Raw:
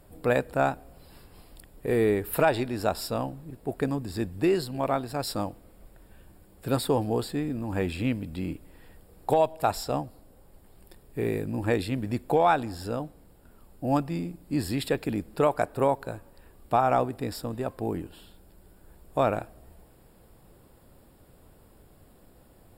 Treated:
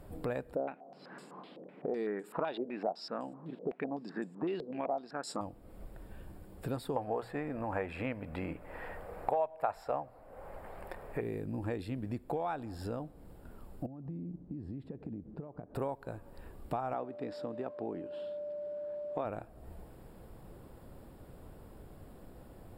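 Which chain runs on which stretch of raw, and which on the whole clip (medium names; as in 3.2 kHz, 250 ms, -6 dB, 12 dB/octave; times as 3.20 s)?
0.55–5.41 s: brick-wall FIR high-pass 150 Hz + step-sequenced low-pass 7.9 Hz 500–7600 Hz
6.96–11.21 s: high-order bell 1.1 kHz +14 dB 2.7 oct + hum notches 60/120/180 Hz
13.86–15.75 s: compression 16:1, threshold -36 dBFS + band-pass filter 170 Hz, Q 0.79
16.93–19.24 s: whistle 590 Hz -38 dBFS + band-pass 220–4200 Hz
whole clip: treble shelf 2.4 kHz -9 dB; compression 3:1, threshold -43 dBFS; trim +4 dB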